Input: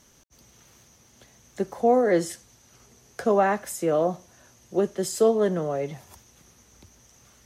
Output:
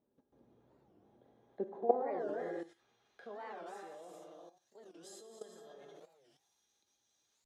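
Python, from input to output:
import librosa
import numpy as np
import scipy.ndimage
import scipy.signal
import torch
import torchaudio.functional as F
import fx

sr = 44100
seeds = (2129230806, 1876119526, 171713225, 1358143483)

y = fx.rev_gated(x, sr, seeds[0], gate_ms=490, shape='flat', drr_db=-1.0)
y = fx.level_steps(y, sr, step_db=14)
y = fx.curve_eq(y, sr, hz=(170.0, 310.0, 5800.0), db=(0, 4, -19))
y = fx.filter_sweep_bandpass(y, sr, from_hz=440.0, to_hz=7100.0, start_s=1.09, end_s=4.37, q=0.86)
y = fx.peak_eq(y, sr, hz=3700.0, db=12.0, octaves=0.36)
y = fx.comb_fb(y, sr, f0_hz=820.0, decay_s=0.17, harmonics='all', damping=0.0, mix_pct=80)
y = fx.record_warp(y, sr, rpm=45.0, depth_cents=250.0)
y = F.gain(torch.from_numpy(y), 9.0).numpy()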